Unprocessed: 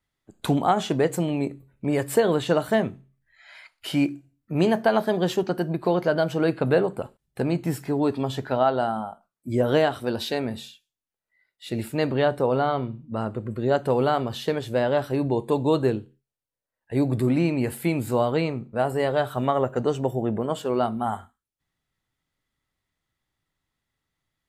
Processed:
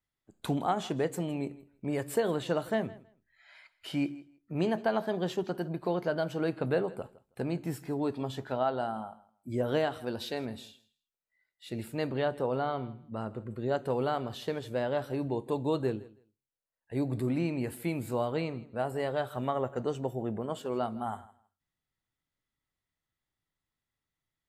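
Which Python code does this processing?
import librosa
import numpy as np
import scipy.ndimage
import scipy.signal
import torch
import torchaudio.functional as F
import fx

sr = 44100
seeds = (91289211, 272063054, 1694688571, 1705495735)

y = fx.high_shelf(x, sr, hz=9200.0, db=-7.0, at=(2.69, 5.42))
y = fx.echo_feedback(y, sr, ms=161, feedback_pct=17, wet_db=-20)
y = F.gain(torch.from_numpy(y), -8.5).numpy()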